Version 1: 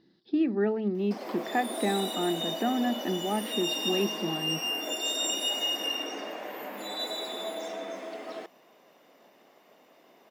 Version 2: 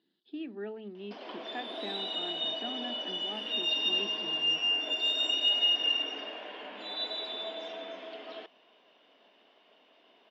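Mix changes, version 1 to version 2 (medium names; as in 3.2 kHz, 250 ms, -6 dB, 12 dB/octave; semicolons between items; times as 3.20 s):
speech -7.0 dB; master: add cabinet simulation 330–4000 Hz, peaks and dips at 350 Hz -5 dB, 530 Hz -7 dB, 800 Hz -6 dB, 1.2 kHz -6 dB, 2 kHz -6 dB, 3.1 kHz +8 dB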